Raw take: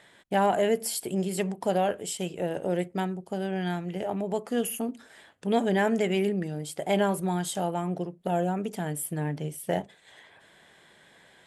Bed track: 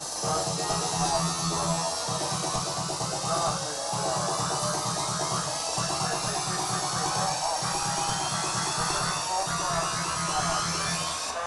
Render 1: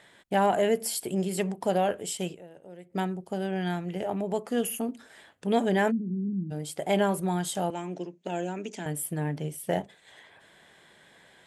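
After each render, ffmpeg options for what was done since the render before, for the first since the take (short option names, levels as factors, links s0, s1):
-filter_complex "[0:a]asplit=3[s0][s1][s2];[s0]afade=t=out:st=5.9:d=0.02[s3];[s1]asuperpass=centerf=200:order=8:qfactor=1.2,afade=t=in:st=5.9:d=0.02,afade=t=out:st=6.5:d=0.02[s4];[s2]afade=t=in:st=6.5:d=0.02[s5];[s3][s4][s5]amix=inputs=3:normalize=0,asettb=1/sr,asplit=3[s6][s7][s8];[s6]atrim=end=7.704[s9];[s7]atrim=start=7.7:end=8.86,asetpts=PTS-STARTPTS,afade=t=in:d=0.004:c=qsin,afade=t=out:st=1.156:d=0.004:c=qsin,highpass=f=200:w=0.5412,highpass=f=200:w=1.3066,equalizer=f=210:t=q:w=4:g=-5,equalizer=f=490:t=q:w=4:g=-6,equalizer=f=740:t=q:w=4:g=-7,equalizer=f=1200:t=q:w=4:g=-8,equalizer=f=2500:t=q:w=4:g=5,equalizer=f=6400:t=q:w=4:g=10,lowpass=f=7700:w=0.5412,lowpass=f=7700:w=1.3066[s10];[s8]atrim=start=8.856[s11];[s9][s10]acrossfade=d=0.004:c1=hsin:c2=qsin[s12];[s12][s11]acrossfade=d=0.004:c1=qsin:c2=hsin,asplit=3[s13][s14][s15];[s13]atrim=end=2.61,asetpts=PTS-STARTPTS,afade=t=out:st=2.33:d=0.28:c=exp:silence=0.11885[s16];[s14]atrim=start=2.61:end=2.66,asetpts=PTS-STARTPTS,volume=0.119[s17];[s15]atrim=start=2.66,asetpts=PTS-STARTPTS,afade=t=in:d=0.28:c=exp:silence=0.11885[s18];[s16][s17][s18]concat=n=3:v=0:a=1"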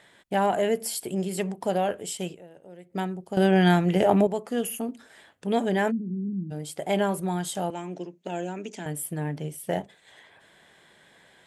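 -filter_complex "[0:a]asplit=3[s0][s1][s2];[s0]atrim=end=3.372[s3];[s1]atrim=start=3.368:end=4.272,asetpts=PTS-STARTPTS,volume=3.55[s4];[s2]atrim=start=4.268[s5];[s3][s4]acrossfade=d=0.004:c1=hsin:c2=hsin[s6];[s6][s5]acrossfade=d=0.004:c1=hsin:c2=hsin"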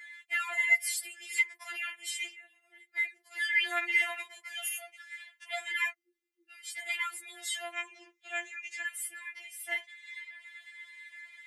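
-af "highpass=f=2000:t=q:w=8.8,afftfilt=real='re*4*eq(mod(b,16),0)':imag='im*4*eq(mod(b,16),0)':win_size=2048:overlap=0.75"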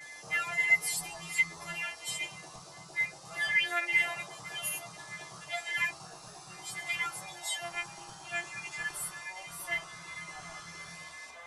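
-filter_complex "[1:a]volume=0.1[s0];[0:a][s0]amix=inputs=2:normalize=0"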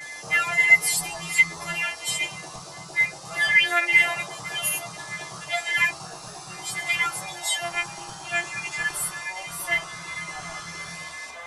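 -af "volume=2.99"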